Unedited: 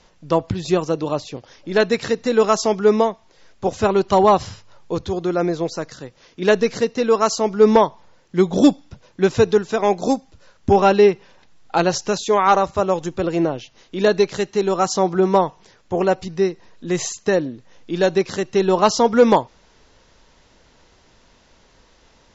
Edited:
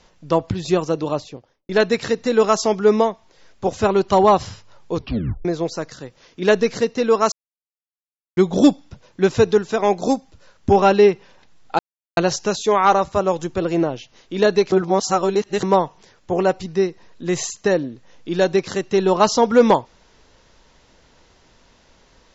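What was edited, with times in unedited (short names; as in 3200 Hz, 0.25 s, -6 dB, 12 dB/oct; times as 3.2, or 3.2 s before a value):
1.1–1.69 studio fade out
4.96 tape stop 0.49 s
7.32–8.37 mute
11.79 insert silence 0.38 s
14.34–15.25 reverse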